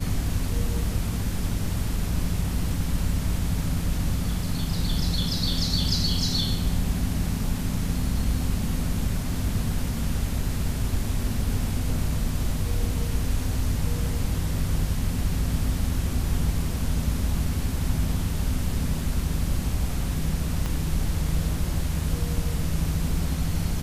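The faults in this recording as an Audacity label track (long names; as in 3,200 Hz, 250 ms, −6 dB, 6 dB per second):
20.660000	20.660000	click −15 dBFS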